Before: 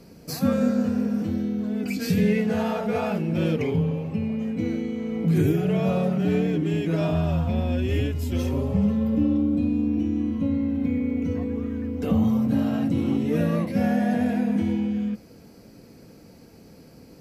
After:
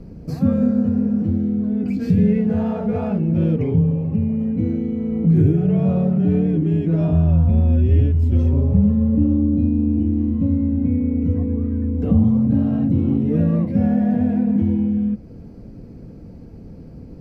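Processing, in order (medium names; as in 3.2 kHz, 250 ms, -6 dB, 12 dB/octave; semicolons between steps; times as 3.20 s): tilt EQ -4.5 dB/octave; in parallel at 0 dB: compression, threshold -23 dBFS, peak gain reduction 17 dB; on the sum: trim -6.5 dB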